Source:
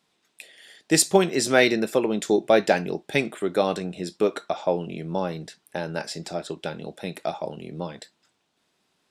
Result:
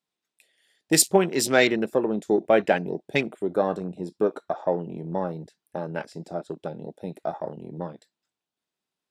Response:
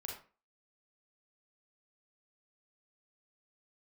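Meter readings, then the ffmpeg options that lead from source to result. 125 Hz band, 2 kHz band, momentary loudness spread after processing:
-1.0 dB, -1.5 dB, 16 LU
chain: -af "afwtdn=0.02,highshelf=f=11000:g=8.5,volume=0.891"

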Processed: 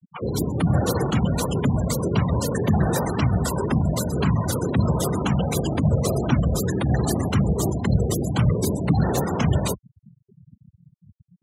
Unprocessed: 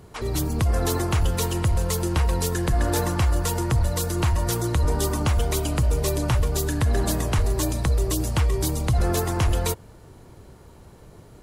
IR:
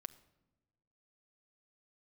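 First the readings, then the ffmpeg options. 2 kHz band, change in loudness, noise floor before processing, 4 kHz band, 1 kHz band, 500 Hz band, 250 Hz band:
-0.5 dB, +1.5 dB, -48 dBFS, -2.5 dB, +1.0 dB, +2.0 dB, +6.0 dB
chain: -af "afftfilt=real='hypot(re,im)*cos(2*PI*random(0))':imag='hypot(re,im)*sin(2*PI*random(1))':win_size=512:overlap=0.75,afreqshift=53,afftfilt=real='re*gte(hypot(re,im),0.02)':imag='im*gte(hypot(re,im),0.02)':win_size=1024:overlap=0.75,volume=2.24"

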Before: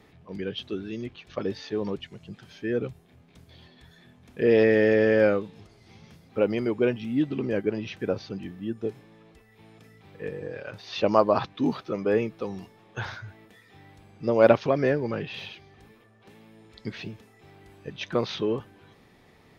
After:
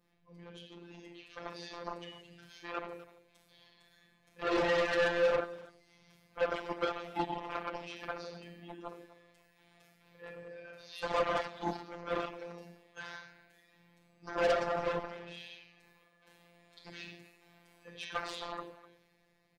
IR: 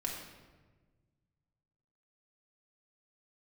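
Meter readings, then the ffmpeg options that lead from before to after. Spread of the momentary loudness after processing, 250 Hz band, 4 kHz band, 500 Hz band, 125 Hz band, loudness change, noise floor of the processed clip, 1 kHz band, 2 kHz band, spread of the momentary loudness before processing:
22 LU, -16.0 dB, -5.0 dB, -11.0 dB, -16.0 dB, -9.5 dB, -70 dBFS, -4.0 dB, -5.5 dB, 20 LU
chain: -filter_complex "[1:a]atrim=start_sample=2205,afade=t=out:st=0.22:d=0.01,atrim=end_sample=10143[s0];[0:a][s0]afir=irnorm=-1:irlink=0,aeval=exprs='0.596*(cos(1*acos(clip(val(0)/0.596,-1,1)))-cos(1*PI/2))+0.0168*(cos(3*acos(clip(val(0)/0.596,-1,1)))-cos(3*PI/2))+0.0266*(cos(5*acos(clip(val(0)/0.596,-1,1)))-cos(5*PI/2))+0.119*(cos(7*acos(clip(val(0)/0.596,-1,1)))-cos(7*PI/2))':c=same,highshelf=f=5500:g=5.5,acrossover=split=480[s1][s2];[s2]dynaudnorm=f=190:g=11:m=3.76[s3];[s1][s3]amix=inputs=2:normalize=0,afftfilt=real='hypot(re,im)*cos(PI*b)':imag='0':win_size=1024:overlap=0.75,adynamicequalizer=threshold=0.02:dfrequency=2300:dqfactor=1.4:tfrequency=2300:tqfactor=1.4:attack=5:release=100:ratio=0.375:range=2:mode=cutabove:tftype=bell,asoftclip=type=tanh:threshold=0.106,asplit=2[s4][s5];[s5]adelay=250,highpass=300,lowpass=3400,asoftclip=type=hard:threshold=0.0422,volume=0.158[s6];[s4][s6]amix=inputs=2:normalize=0,volume=0.668"

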